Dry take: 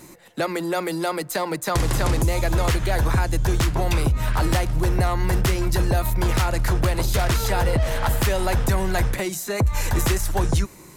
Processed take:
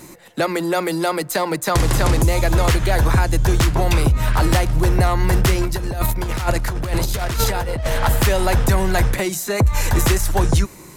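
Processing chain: 5.61–7.87 s: compressor with a negative ratio -23 dBFS, ratio -0.5; trim +4.5 dB

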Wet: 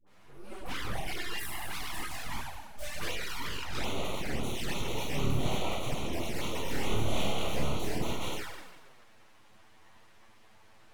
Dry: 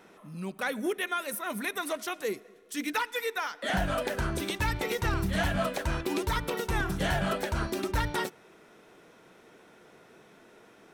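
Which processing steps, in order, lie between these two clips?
plate-style reverb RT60 1.4 s, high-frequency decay 0.85×, DRR -8.5 dB; full-wave rectifier; touch-sensitive flanger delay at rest 11 ms, full sweep at -17.5 dBFS; 6.61–7.92 s: doubling 29 ms -3 dB; phase dispersion highs, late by 69 ms, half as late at 710 Hz; trim -7.5 dB

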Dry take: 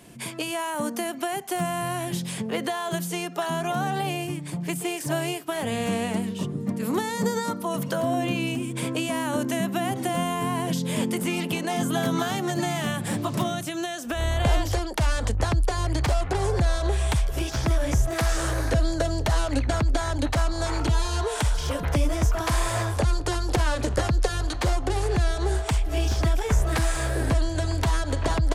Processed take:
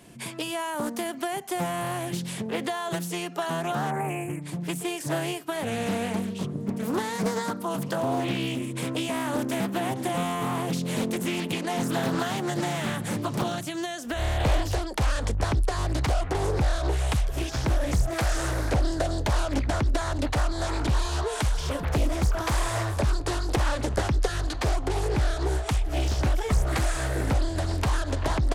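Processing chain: time-frequency box 3.91–4.42 s, 2.5–7.2 kHz -28 dB; loudspeaker Doppler distortion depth 0.84 ms; trim -1.5 dB

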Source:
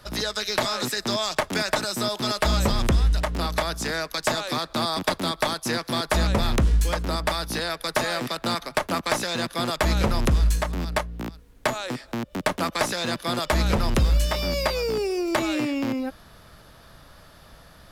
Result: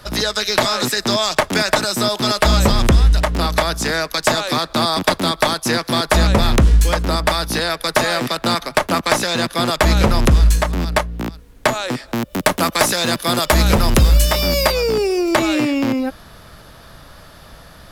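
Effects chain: 12.14–14.72 s: treble shelf 9.3 kHz +11.5 dB; trim +8 dB

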